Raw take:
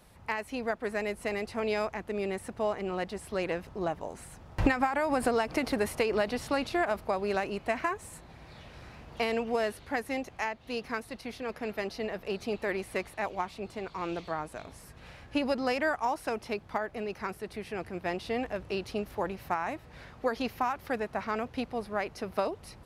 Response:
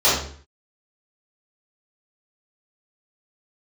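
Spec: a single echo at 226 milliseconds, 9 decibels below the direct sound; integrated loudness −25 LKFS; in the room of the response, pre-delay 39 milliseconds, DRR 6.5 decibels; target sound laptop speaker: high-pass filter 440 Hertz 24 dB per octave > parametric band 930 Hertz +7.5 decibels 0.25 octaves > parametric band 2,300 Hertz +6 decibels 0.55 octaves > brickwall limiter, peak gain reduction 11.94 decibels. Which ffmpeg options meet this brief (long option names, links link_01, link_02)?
-filter_complex "[0:a]aecho=1:1:226:0.355,asplit=2[link_01][link_02];[1:a]atrim=start_sample=2205,adelay=39[link_03];[link_02][link_03]afir=irnorm=-1:irlink=0,volume=-27.5dB[link_04];[link_01][link_04]amix=inputs=2:normalize=0,highpass=frequency=440:width=0.5412,highpass=frequency=440:width=1.3066,equalizer=frequency=930:width_type=o:width=0.25:gain=7.5,equalizer=frequency=2300:width_type=o:width=0.55:gain=6,volume=10dB,alimiter=limit=-14.5dB:level=0:latency=1"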